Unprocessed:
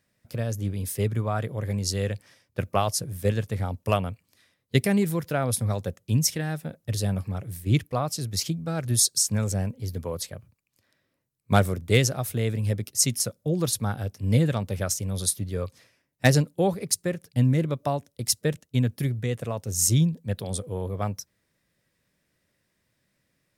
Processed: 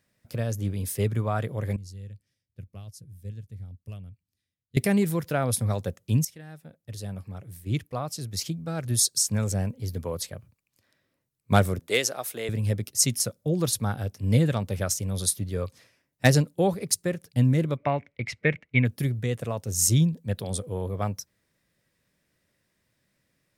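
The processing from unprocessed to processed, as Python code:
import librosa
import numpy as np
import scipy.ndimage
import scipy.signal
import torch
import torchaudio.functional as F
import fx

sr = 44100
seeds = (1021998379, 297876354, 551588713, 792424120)

y = fx.tone_stack(x, sr, knobs='10-0-1', at=(1.76, 4.77))
y = fx.highpass(y, sr, hz=430.0, slope=12, at=(11.79, 12.49))
y = fx.lowpass_res(y, sr, hz=2200.0, q=11.0, at=(17.76, 18.84), fade=0.02)
y = fx.edit(y, sr, fx.fade_in_from(start_s=6.25, length_s=3.4, floor_db=-17.5), tone=tone)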